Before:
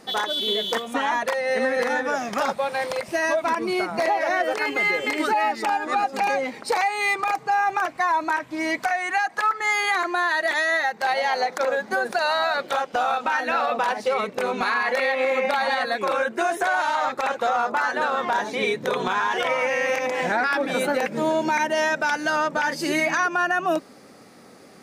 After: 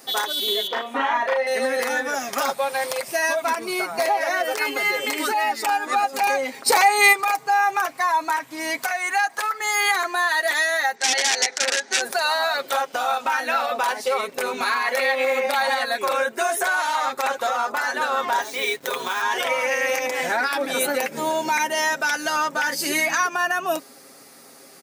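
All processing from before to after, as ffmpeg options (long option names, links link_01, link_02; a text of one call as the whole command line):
ffmpeg -i in.wav -filter_complex "[0:a]asettb=1/sr,asplit=3[link_01][link_02][link_03];[link_01]atrim=end=0.674[link_04];[link_02]atrim=start=0.67:end=1.47,asetpts=PTS-STARTPTS,afade=type=in:duration=0.004:curve=qsin,afade=type=out:start_time=0.796:duration=0.004:curve=qsin,acrossover=split=5000[link_05][link_06];[link_06]acompressor=threshold=-53dB:ratio=4:attack=1:release=60[link_07];[link_05][link_07]amix=inputs=2:normalize=0,bass=frequency=250:gain=-5,treble=frequency=4000:gain=-14,asplit=2[link_08][link_09];[link_09]adelay=34,volume=-2.5dB[link_10];[link_08][link_10]amix=inputs=2:normalize=0,atrim=end_sample=35280[link_11];[link_03]atrim=start=1.466[link_12];[link_04][link_11]acrossfade=duration=0.004:curve1=hsin:curve2=qsin[link_13];[link_13][link_12]acrossfade=duration=0.004:curve1=qsin:curve2=hsin,asettb=1/sr,asplit=3[link_14][link_15][link_16];[link_14]atrim=end=6.664[link_17];[link_15]atrim=start=6.66:end=7.13,asetpts=PTS-STARTPTS,afade=type=in:duration=0.004:curve=qsin,afade=type=out:start_time=0.466:duration=0.004:curve=qsin,lowshelf=frequency=320:gain=8,acontrast=31[link_18];[link_16]atrim=start=7.126[link_19];[link_17][link_18]acrossfade=duration=0.004:curve1=hsin:curve2=qsin[link_20];[link_20][link_19]acrossfade=duration=0.004:curve1=qsin:curve2=hsin,asettb=1/sr,asplit=3[link_21][link_22][link_23];[link_21]atrim=end=10.954[link_24];[link_22]atrim=start=10.95:end=12.01,asetpts=PTS-STARTPTS,afade=type=in:duration=0.004:curve=qsin,afade=type=out:start_time=1.056:duration=0.004:curve=qsin,aeval=exprs='(mod(6.31*val(0)+1,2)-1)/6.31':channel_layout=same,highpass=320,equalizer=frequency=600:width_type=q:width=4:gain=-7,equalizer=frequency=1100:width_type=q:width=4:gain=-9,equalizer=frequency=1800:width_type=q:width=4:gain=4,equalizer=frequency=5900:width_type=q:width=4:gain=5,lowpass=frequency=7400:width=0.5412,lowpass=frequency=7400:width=1.3066[link_25];[link_23]atrim=start=12.006[link_26];[link_24][link_25]acrossfade=duration=0.004:curve1=hsin:curve2=qsin[link_27];[link_27][link_26]acrossfade=duration=0.004:curve1=qsin:curve2=hsin,asettb=1/sr,asplit=3[link_28][link_29][link_30];[link_28]atrim=end=18.424[link_31];[link_29]atrim=start=18.42:end=19.22,asetpts=PTS-STARTPTS,afade=type=in:duration=0.004:curve=qsin,afade=type=out:start_time=0.796:duration=0.004:curve=qsin,lowshelf=frequency=450:gain=-6.5,aeval=exprs='sgn(val(0))*max(abs(val(0))-0.00531,0)':channel_layout=same[link_32];[link_30]atrim=start=19.216[link_33];[link_31][link_32]acrossfade=duration=0.004:curve1=hsin:curve2=qsin[link_34];[link_34][link_33]acrossfade=duration=0.004:curve1=qsin:curve2=hsin,aemphasis=mode=production:type=bsi,aecho=1:1:7.4:0.5,volume=-1dB" out.wav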